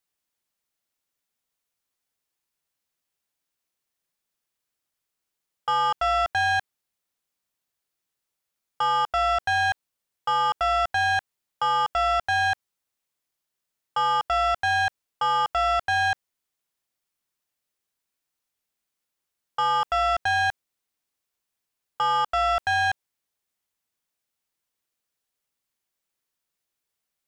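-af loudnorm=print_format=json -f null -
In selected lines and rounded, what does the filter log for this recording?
"input_i" : "-23.8",
"input_tp" : "-19.7",
"input_lra" : "6.7",
"input_thresh" : "-34.1",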